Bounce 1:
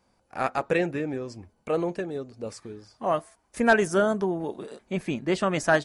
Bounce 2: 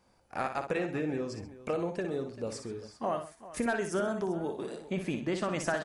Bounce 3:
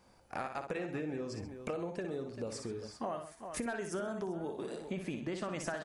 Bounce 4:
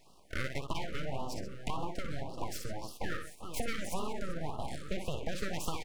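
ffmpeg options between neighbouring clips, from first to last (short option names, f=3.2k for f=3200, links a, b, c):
-filter_complex "[0:a]acompressor=threshold=-30dB:ratio=4,asplit=2[a][b];[b]aecho=0:1:59|130|391:0.422|0.15|0.158[c];[a][c]amix=inputs=2:normalize=0"
-af "acompressor=threshold=-41dB:ratio=3,volume=3dB"
-af "aeval=exprs='abs(val(0))':c=same,afftfilt=real='re*(1-between(b*sr/1024,810*pow(1900/810,0.5+0.5*sin(2*PI*1.8*pts/sr))/1.41,810*pow(1900/810,0.5+0.5*sin(2*PI*1.8*pts/sr))*1.41))':imag='im*(1-between(b*sr/1024,810*pow(1900/810,0.5+0.5*sin(2*PI*1.8*pts/sr))/1.41,810*pow(1900/810,0.5+0.5*sin(2*PI*1.8*pts/sr))*1.41))':win_size=1024:overlap=0.75,volume=5.5dB"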